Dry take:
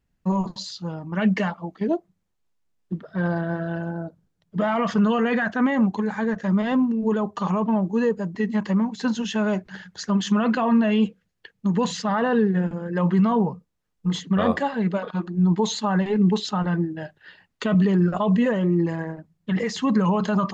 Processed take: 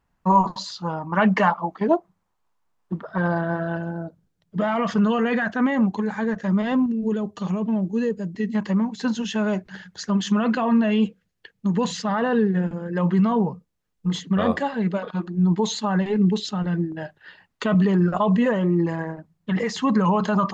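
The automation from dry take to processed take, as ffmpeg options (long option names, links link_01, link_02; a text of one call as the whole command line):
ffmpeg -i in.wav -af "asetnsamples=nb_out_samples=441:pad=0,asendcmd='3.18 equalizer g 6.5;3.77 equalizer g -0.5;6.86 equalizer g -11.5;8.55 equalizer g -1;16.25 equalizer g -8;16.92 equalizer g 4',equalizer=frequency=1000:width_type=o:width=1.3:gain=14" out.wav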